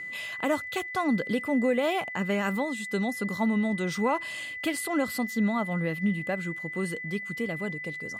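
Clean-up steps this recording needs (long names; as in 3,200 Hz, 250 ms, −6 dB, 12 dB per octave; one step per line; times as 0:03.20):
notch filter 2,000 Hz, Q 30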